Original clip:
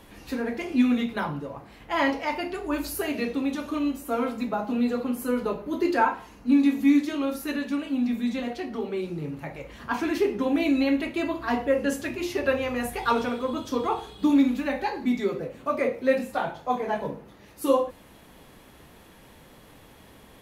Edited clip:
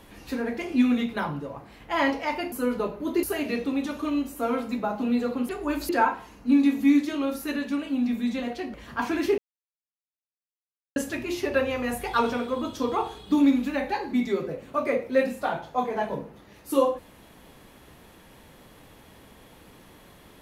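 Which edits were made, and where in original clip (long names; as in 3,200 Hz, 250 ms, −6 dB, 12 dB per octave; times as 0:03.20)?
0:02.52–0:02.92: swap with 0:05.18–0:05.89
0:08.74–0:09.66: remove
0:10.30–0:11.88: silence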